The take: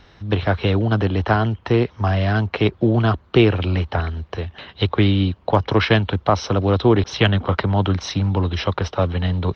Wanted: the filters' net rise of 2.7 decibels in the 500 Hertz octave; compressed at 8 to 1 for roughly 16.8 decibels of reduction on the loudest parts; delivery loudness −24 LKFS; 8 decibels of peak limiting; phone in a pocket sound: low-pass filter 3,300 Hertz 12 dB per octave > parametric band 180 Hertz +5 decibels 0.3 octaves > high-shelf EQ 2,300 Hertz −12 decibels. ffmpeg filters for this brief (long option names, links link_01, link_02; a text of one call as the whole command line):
ffmpeg -i in.wav -af "equalizer=frequency=500:width_type=o:gain=4,acompressor=threshold=-26dB:ratio=8,alimiter=limit=-20.5dB:level=0:latency=1,lowpass=3300,equalizer=frequency=180:width_type=o:width=0.3:gain=5,highshelf=frequency=2300:gain=-12,volume=8.5dB" out.wav